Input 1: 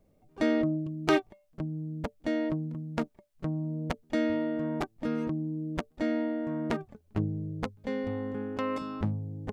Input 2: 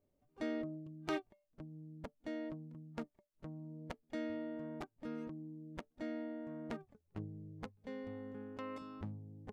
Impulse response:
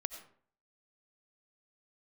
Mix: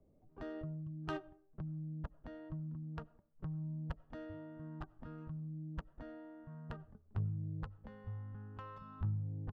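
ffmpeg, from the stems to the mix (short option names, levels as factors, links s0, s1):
-filter_complex "[0:a]acrossover=split=170|3000[s0][s1][s2];[s1]acompressor=threshold=0.00708:ratio=8[s3];[s0][s3][s2]amix=inputs=3:normalize=0,asoftclip=type=tanh:threshold=0.1,volume=0.531,asplit=2[s4][s5];[s5]volume=0.355[s6];[1:a]equalizer=f=3800:w=1.9:g=-9,adelay=0.8,volume=0.75,asplit=2[s7][s8];[s8]volume=0.473[s9];[2:a]atrim=start_sample=2205[s10];[s6][s9]amix=inputs=2:normalize=0[s11];[s11][s10]afir=irnorm=-1:irlink=0[s12];[s4][s7][s12]amix=inputs=3:normalize=0,adynamicsmooth=sensitivity=2:basefreq=1100"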